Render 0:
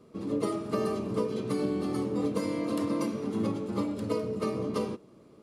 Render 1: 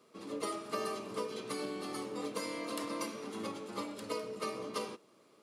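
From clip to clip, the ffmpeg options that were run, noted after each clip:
ffmpeg -i in.wav -af "highpass=frequency=1400:poles=1,volume=2dB" out.wav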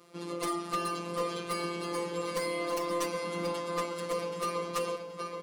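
ffmpeg -i in.wav -filter_complex "[0:a]afftfilt=real='hypot(re,im)*cos(PI*b)':imag='0':win_size=1024:overlap=0.75,asplit=2[link_01][link_02];[link_02]adelay=776,lowpass=frequency=5000:poles=1,volume=-6dB,asplit=2[link_03][link_04];[link_04]adelay=776,lowpass=frequency=5000:poles=1,volume=0.42,asplit=2[link_05][link_06];[link_06]adelay=776,lowpass=frequency=5000:poles=1,volume=0.42,asplit=2[link_07][link_08];[link_08]adelay=776,lowpass=frequency=5000:poles=1,volume=0.42,asplit=2[link_09][link_10];[link_10]adelay=776,lowpass=frequency=5000:poles=1,volume=0.42[link_11];[link_01][link_03][link_05][link_07][link_09][link_11]amix=inputs=6:normalize=0,aeval=exprs='0.106*sin(PI/2*2.82*val(0)/0.106)':channel_layout=same,volume=-2.5dB" out.wav

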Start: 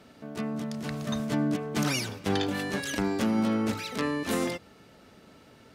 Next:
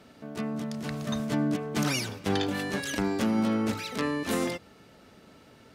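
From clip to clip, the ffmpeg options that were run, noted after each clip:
ffmpeg -i in.wav -af anull out.wav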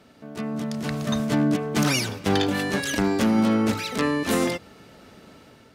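ffmpeg -i in.wav -af "aeval=exprs='0.112*(abs(mod(val(0)/0.112+3,4)-2)-1)':channel_layout=same,dynaudnorm=framelen=210:gausssize=5:maxgain=6dB" out.wav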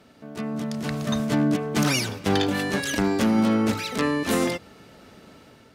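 ffmpeg -i in.wav -ar 44100 -c:a libmp3lame -b:a 192k out.mp3

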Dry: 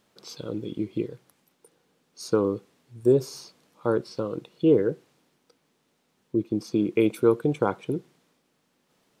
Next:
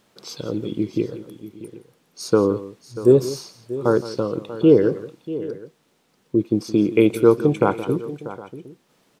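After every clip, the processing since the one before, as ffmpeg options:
ffmpeg -i in.wav -af "aecho=1:1:168|639|761:0.168|0.178|0.1,volume=6dB" out.wav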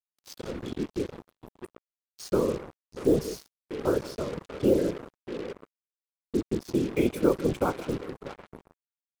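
ffmpeg -i in.wav -af "afftfilt=real='hypot(re,im)*cos(2*PI*random(0))':imag='hypot(re,im)*sin(2*PI*random(1))':win_size=512:overlap=0.75,acrusher=bits=5:mix=0:aa=0.5,volume=-2.5dB" out.wav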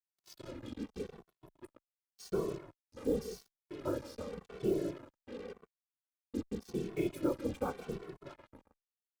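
ffmpeg -i in.wav -filter_complex "[0:a]asplit=2[link_01][link_02];[link_02]adelay=2.2,afreqshift=-0.89[link_03];[link_01][link_03]amix=inputs=2:normalize=1,volume=-7dB" out.wav

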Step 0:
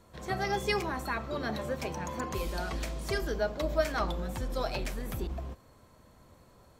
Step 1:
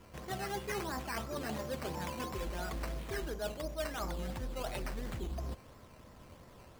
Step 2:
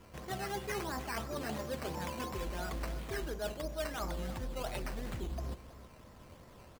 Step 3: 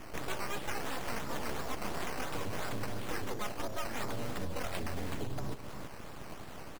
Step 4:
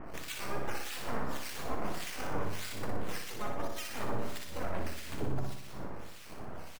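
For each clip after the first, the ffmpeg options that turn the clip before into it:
ffmpeg -i in.wav -af "areverse,acompressor=threshold=-39dB:ratio=5,areverse,acrusher=samples=10:mix=1:aa=0.000001:lfo=1:lforange=6:lforate=2.9,volume=3dB" out.wav
ffmpeg -i in.wav -af "aecho=1:1:323:0.15" out.wav
ffmpeg -i in.wav -af "acompressor=threshold=-43dB:ratio=5,aeval=exprs='abs(val(0))':channel_layout=same,volume=11.5dB" out.wav
ffmpeg -i in.wav -filter_complex "[0:a]acrossover=split=1800[link_01][link_02];[link_01]aeval=exprs='val(0)*(1-1/2+1/2*cos(2*PI*1.7*n/s))':channel_layout=same[link_03];[link_02]aeval=exprs='val(0)*(1-1/2-1/2*cos(2*PI*1.7*n/s))':channel_layout=same[link_04];[link_03][link_04]amix=inputs=2:normalize=0,asplit=2[link_05][link_06];[link_06]aecho=0:1:60|120|180|240|300|360|420:0.562|0.309|0.17|0.0936|0.0515|0.0283|0.0156[link_07];[link_05][link_07]amix=inputs=2:normalize=0,volume=3dB" out.wav

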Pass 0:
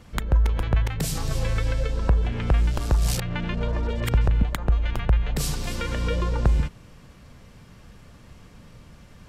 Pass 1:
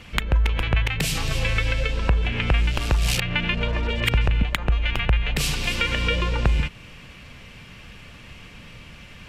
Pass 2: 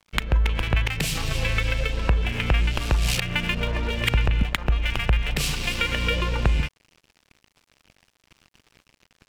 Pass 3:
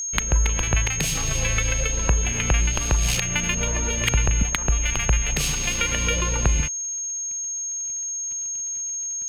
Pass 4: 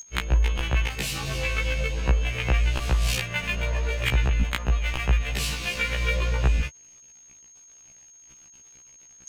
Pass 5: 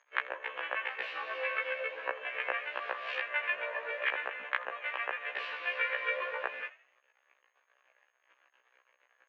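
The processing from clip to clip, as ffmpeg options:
ffmpeg -i in.wav -filter_complex "[0:a]equalizer=frequency=2600:width_type=o:width=1.1:gain=14.5,asplit=2[link_01][link_02];[link_02]acompressor=threshold=-27dB:ratio=6,volume=-3dB[link_03];[link_01][link_03]amix=inputs=2:normalize=0,volume=-2dB" out.wav
ffmpeg -i in.wav -af "aeval=exprs='sgn(val(0))*max(abs(val(0))-0.0141,0)':channel_layout=same" out.wav
ffmpeg -i in.wav -af "aeval=exprs='val(0)+0.0501*sin(2*PI*6500*n/s)':channel_layout=same" out.wav
ffmpeg -i in.wav -af "afftfilt=real='re*1.73*eq(mod(b,3),0)':imag='im*1.73*eq(mod(b,3),0)':win_size=2048:overlap=0.75" out.wav
ffmpeg -i in.wav -filter_complex "[0:a]highpass=frequency=490:width=0.5412,highpass=frequency=490:width=1.3066,equalizer=frequency=540:width_type=q:width=4:gain=6,equalizer=frequency=1100:width_type=q:width=4:gain=6,equalizer=frequency=1700:width_type=q:width=4:gain=10,lowpass=frequency=2700:width=0.5412,lowpass=frequency=2700:width=1.3066,asplit=4[link_01][link_02][link_03][link_04];[link_02]adelay=82,afreqshift=73,volume=-18.5dB[link_05];[link_03]adelay=164,afreqshift=146,volume=-27.4dB[link_06];[link_04]adelay=246,afreqshift=219,volume=-36.2dB[link_07];[link_01][link_05][link_06][link_07]amix=inputs=4:normalize=0,volume=-6.5dB" out.wav

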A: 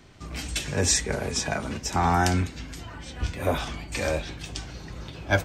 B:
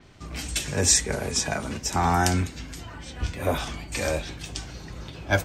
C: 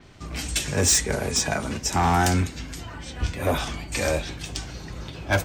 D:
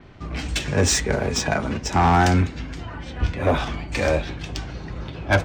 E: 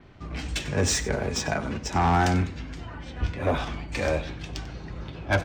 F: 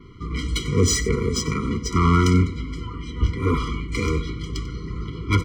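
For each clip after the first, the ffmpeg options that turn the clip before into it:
ffmpeg -i in.wav -af "adynamicequalizer=threshold=0.00891:dfrequency=5700:dqfactor=0.7:tfrequency=5700:tqfactor=0.7:attack=5:release=100:ratio=0.375:range=3:mode=boostabove:tftype=highshelf" out.wav
ffmpeg -i in.wav -af "asoftclip=type=hard:threshold=-17.5dB,volume=2.5dB" out.wav
ffmpeg -i in.wav -af "adynamicsmooth=sensitivity=1:basefreq=3300,volume=4dB" out.wav
ffmpeg -i in.wav -af "aecho=1:1:94:0.15,volume=-5dB" out.wav
ffmpeg -i in.wav -af "afftfilt=real='re*eq(mod(floor(b*sr/1024/480),2),0)':imag='im*eq(mod(floor(b*sr/1024/480),2),0)':win_size=1024:overlap=0.75,volume=7dB" out.wav

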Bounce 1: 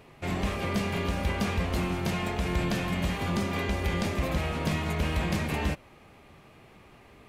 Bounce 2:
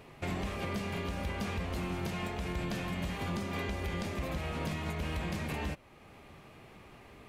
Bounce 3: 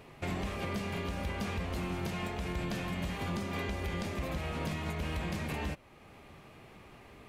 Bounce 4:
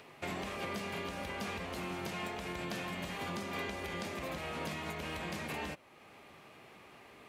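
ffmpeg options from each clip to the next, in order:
ffmpeg -i in.wav -af "alimiter=level_in=2.5dB:limit=-24dB:level=0:latency=1:release=484,volume=-2.5dB" out.wav
ffmpeg -i in.wav -af anull out.wav
ffmpeg -i in.wav -filter_complex "[0:a]highpass=frequency=330:poles=1,acrossover=split=420|1300|5700[link_01][link_02][link_03][link_04];[link_03]acompressor=mode=upward:threshold=-58dB:ratio=2.5[link_05];[link_01][link_02][link_05][link_04]amix=inputs=4:normalize=0" out.wav

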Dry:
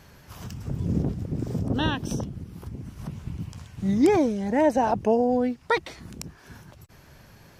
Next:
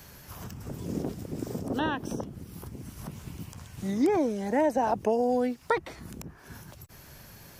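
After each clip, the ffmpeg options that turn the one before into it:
ffmpeg -i in.wav -filter_complex "[0:a]aemphasis=mode=production:type=50kf,acrossover=split=250|2000[link_01][link_02][link_03];[link_01]acompressor=threshold=-41dB:ratio=4[link_04];[link_02]acompressor=threshold=-22dB:ratio=4[link_05];[link_03]acompressor=threshold=-49dB:ratio=4[link_06];[link_04][link_05][link_06]amix=inputs=3:normalize=0" out.wav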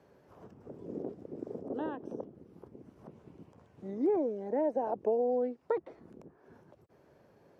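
ffmpeg -i in.wav -af "bandpass=frequency=450:width_type=q:width=1.6:csg=0,volume=-2dB" out.wav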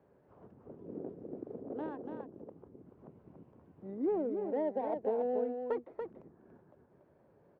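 ffmpeg -i in.wav -af "adynamicsmooth=sensitivity=3.5:basefreq=2000,aecho=1:1:286:0.501,volume=-3.5dB" out.wav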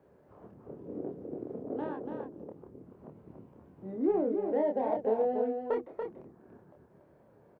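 ffmpeg -i in.wav -filter_complex "[0:a]asplit=2[link_01][link_02];[link_02]adelay=27,volume=-3.5dB[link_03];[link_01][link_03]amix=inputs=2:normalize=0,volume=3dB" out.wav

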